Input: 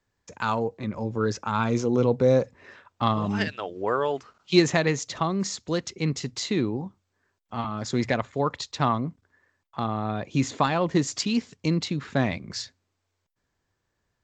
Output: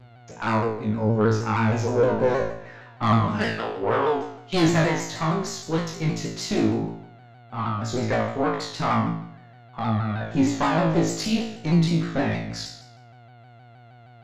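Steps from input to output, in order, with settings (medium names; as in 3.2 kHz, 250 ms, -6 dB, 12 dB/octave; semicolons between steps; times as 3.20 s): treble shelf 2.3 kHz -6 dB; mains buzz 120 Hz, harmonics 37, -50 dBFS -7 dB/octave; valve stage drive 20 dB, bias 0.6; on a send: flutter echo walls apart 3.1 m, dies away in 0.67 s; on the sum: vibrato with a chosen wave saw down 6.4 Hz, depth 100 cents; trim +3 dB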